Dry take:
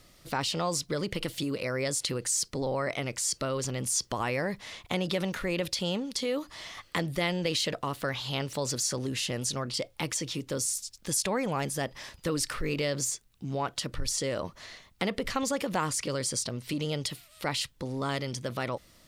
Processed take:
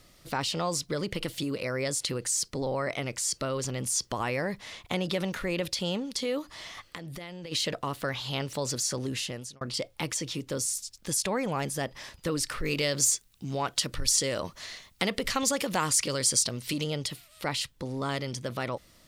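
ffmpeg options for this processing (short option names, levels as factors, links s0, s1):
-filter_complex "[0:a]asplit=3[s0][s1][s2];[s0]afade=t=out:st=6.41:d=0.02[s3];[s1]acompressor=threshold=0.0158:ratio=16:attack=3.2:release=140:knee=1:detection=peak,afade=t=in:st=6.41:d=0.02,afade=t=out:st=7.51:d=0.02[s4];[s2]afade=t=in:st=7.51:d=0.02[s5];[s3][s4][s5]amix=inputs=3:normalize=0,asettb=1/sr,asplit=3[s6][s7][s8];[s6]atrim=end=12.654[s9];[s7]atrim=start=12.65:end=16.84,asetpts=PTS-STARTPTS,afade=t=in:d=0.004:c=qsin,afade=t=out:st=4.186:d=0.004:c=qsin,highshelf=f=2400:g=8[s10];[s8]atrim=start=16.836[s11];[s9][s10]acrossfade=d=0.004:c1=hsin:c2=qsin[s12];[s12][s11]acrossfade=d=0.004:c1=qsin:c2=hsin,asplit=2[s13][s14];[s13]atrim=end=9.61,asetpts=PTS-STARTPTS,afade=t=out:st=9.15:d=0.46[s15];[s14]atrim=start=9.61,asetpts=PTS-STARTPTS,afade=t=in:d=0.004:c=hsin[s16];[s15][s16]concat=n=2:v=0:a=1"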